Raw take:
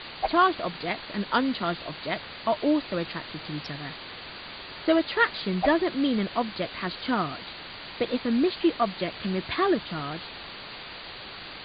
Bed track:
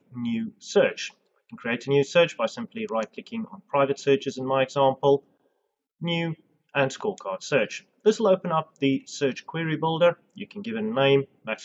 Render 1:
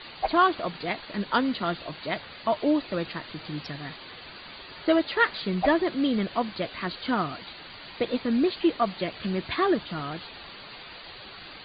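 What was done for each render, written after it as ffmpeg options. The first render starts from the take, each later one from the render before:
-af "afftdn=nr=7:nf=-41"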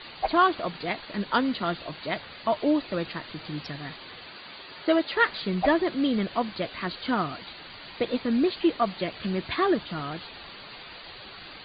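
-filter_complex "[0:a]asettb=1/sr,asplit=3[a][b][c];[a]atrim=end=4.254[d];[b]atrim=start=4.25:end=5.13,asetpts=PTS-STARTPTS,afade=t=in:d=0.004:c=qsin,afade=t=out:st=0.876:d=0.004:c=qsin,highpass=f=160:p=1[e];[c]atrim=start=5.126[f];[d][e]acrossfade=d=0.004:c1=hsin:c2=qsin[g];[g][f]acrossfade=d=0.004:c1=qsin:c2=hsin"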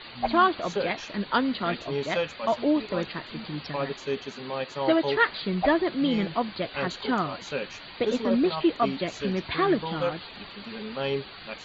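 -filter_complex "[1:a]volume=-9dB[a];[0:a][a]amix=inputs=2:normalize=0"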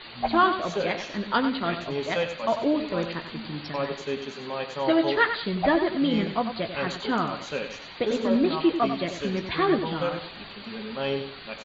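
-filter_complex "[0:a]asplit=2[a][b];[b]adelay=18,volume=-12dB[c];[a][c]amix=inputs=2:normalize=0,aecho=1:1:95|190|285:0.355|0.103|0.0298"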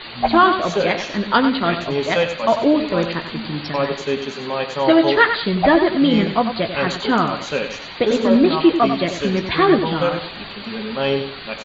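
-af "volume=8.5dB,alimiter=limit=-3dB:level=0:latency=1"

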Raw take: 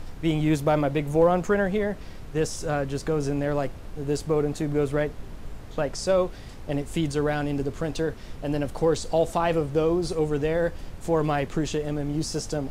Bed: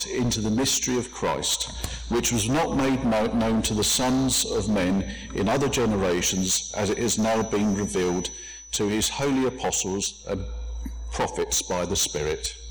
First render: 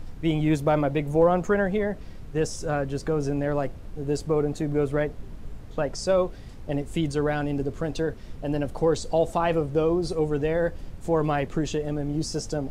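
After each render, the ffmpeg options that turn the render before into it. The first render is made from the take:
-af "afftdn=nr=6:nf=-40"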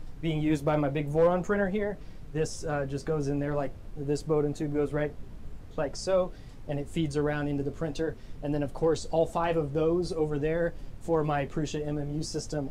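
-af "asoftclip=type=hard:threshold=-12.5dB,flanger=delay=6.5:depth=7.8:regen=-46:speed=0.47:shape=sinusoidal"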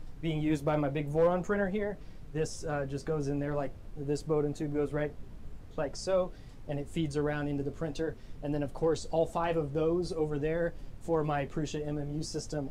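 -af "volume=-3dB"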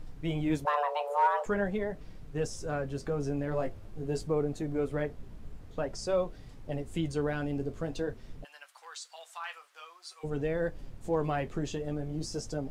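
-filter_complex "[0:a]asplit=3[a][b][c];[a]afade=t=out:st=0.64:d=0.02[d];[b]afreqshift=430,afade=t=in:st=0.64:d=0.02,afade=t=out:st=1.45:d=0.02[e];[c]afade=t=in:st=1.45:d=0.02[f];[d][e][f]amix=inputs=3:normalize=0,asettb=1/sr,asplit=3[g][h][i];[g]atrim=end=3.504[j];[h]atrim=start=3.5:end=4.28,asetpts=PTS-STARTPTS,afade=t=in:d=0.004:c=qsin,afade=t=out:st=0.776:d=0.004:c=qsin,asplit=2[k][l];[l]adelay=19,volume=-6dB[m];[k][m]amix=inputs=2:normalize=0,atrim=end_sample=34398[n];[i]atrim=start=4.276[o];[j][n]acrossfade=d=0.004:c1=hsin:c2=qsin[p];[p][o]acrossfade=d=0.004:c1=qsin:c2=hsin,asplit=3[q][r][s];[q]afade=t=out:st=8.43:d=0.02[t];[r]highpass=f=1.2k:w=0.5412,highpass=f=1.2k:w=1.3066,afade=t=in:st=8.43:d=0.02,afade=t=out:st=10.23:d=0.02[u];[s]afade=t=in:st=10.23:d=0.02[v];[t][u][v]amix=inputs=3:normalize=0"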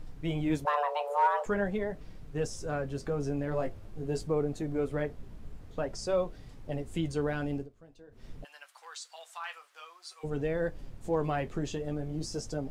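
-filter_complex "[0:a]asplit=3[a][b][c];[a]atrim=end=7.69,asetpts=PTS-STARTPTS,afade=t=out:st=7.55:d=0.14:silence=0.0944061[d];[b]atrim=start=7.69:end=8.11,asetpts=PTS-STARTPTS,volume=-20.5dB[e];[c]atrim=start=8.11,asetpts=PTS-STARTPTS,afade=t=in:d=0.14:silence=0.0944061[f];[d][e][f]concat=n=3:v=0:a=1"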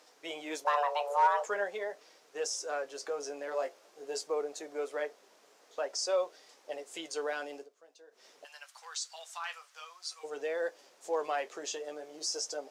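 -af "highpass=f=460:w=0.5412,highpass=f=460:w=1.3066,equalizer=f=5.9k:t=o:w=0.99:g=9"

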